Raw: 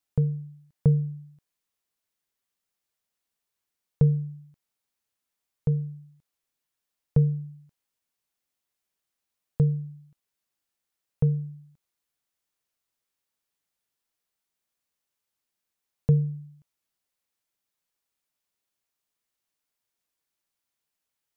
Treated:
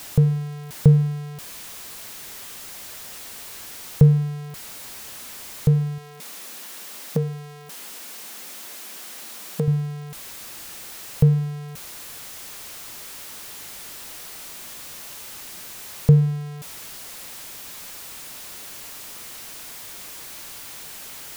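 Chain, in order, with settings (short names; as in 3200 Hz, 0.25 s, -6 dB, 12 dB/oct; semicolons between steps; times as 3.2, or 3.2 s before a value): zero-crossing step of -38 dBFS; 5.98–9.68 brick-wall FIR high-pass 160 Hz; gain +6.5 dB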